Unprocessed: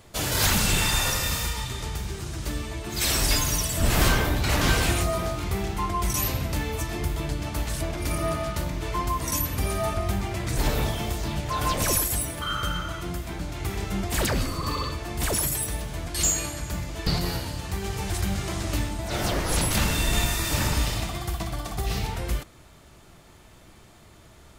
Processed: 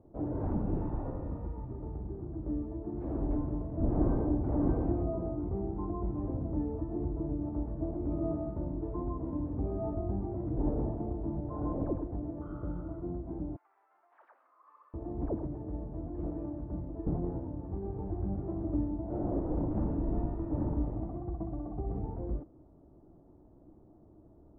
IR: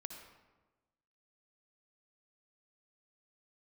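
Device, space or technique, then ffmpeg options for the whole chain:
under water: -filter_complex "[0:a]asettb=1/sr,asplit=3[a][b][c];[a]atrim=end=13.564[d];[b]atrim=start=13.56:end=14.94,asetpts=PTS-STARTPTS,afade=t=in:d=0.004:c=qsin,afade=t=out:st=1.376:d=0.004:c=qsin,highpass=f=1.3k:w=0.5412,highpass=f=1.3k:w=1.3066[e];[c]atrim=start=14.936[f];[d][e]acrossfade=d=0.004:c1=hsin:c2=qsin[g];[g][f]acrossfade=d=0.004:c1=qsin:c2=hsin,lowpass=f=780:w=0.5412,lowpass=f=780:w=1.3066,equalizer=f=300:t=o:w=0.53:g=11.5,volume=-8dB"

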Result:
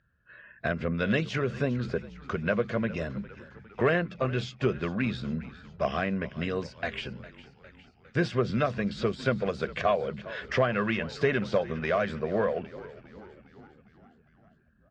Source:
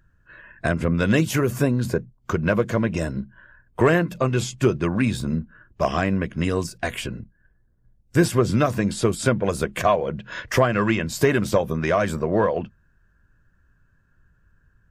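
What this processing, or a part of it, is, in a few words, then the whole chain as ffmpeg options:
frequency-shifting delay pedal into a guitar cabinet: -filter_complex "[0:a]asplit=7[a][b][c][d][e][f][g];[b]adelay=406,afreqshift=-65,volume=-17dB[h];[c]adelay=812,afreqshift=-130,volume=-21dB[i];[d]adelay=1218,afreqshift=-195,volume=-25dB[j];[e]adelay=1624,afreqshift=-260,volume=-29dB[k];[f]adelay=2030,afreqshift=-325,volume=-33.1dB[l];[g]adelay=2436,afreqshift=-390,volume=-37.1dB[m];[a][h][i][j][k][l][m]amix=inputs=7:normalize=0,highpass=75,equalizer=f=97:t=q:w=4:g=-9,equalizer=f=160:t=q:w=4:g=-4,equalizer=f=310:t=q:w=4:g=-10,equalizer=f=940:t=q:w=4:g=-8,lowpass=f=4.5k:w=0.5412,lowpass=f=4.5k:w=1.3066,volume=-4.5dB"

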